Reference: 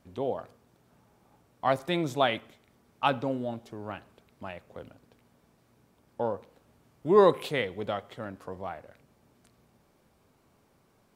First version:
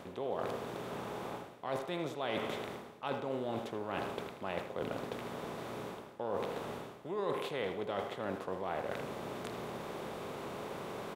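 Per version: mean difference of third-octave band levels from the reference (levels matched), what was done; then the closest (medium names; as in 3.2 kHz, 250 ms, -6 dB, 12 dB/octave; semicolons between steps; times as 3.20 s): 10.0 dB: spectral levelling over time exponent 0.6; reverse; compression 8:1, threshold -37 dBFS, peak gain reduction 23 dB; reverse; speakerphone echo 80 ms, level -8 dB; trim +2.5 dB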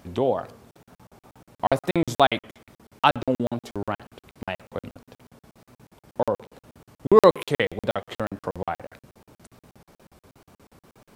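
4.5 dB: in parallel at +2 dB: compression, threshold -39 dBFS, peak gain reduction 22.5 dB; on the sum: wow and flutter 68 cents; crackling interface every 0.12 s, samples 2048, zero, from 0.71 s; trim +6 dB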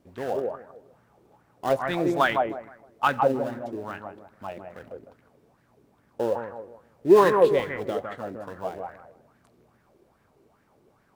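6.0 dB: in parallel at -9.5 dB: sample-rate reducer 2.2 kHz, jitter 20%; on the sum: bucket-brigade echo 157 ms, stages 2048, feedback 32%, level -4.5 dB; sweeping bell 2.4 Hz 350–1800 Hz +13 dB; trim -4 dB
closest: second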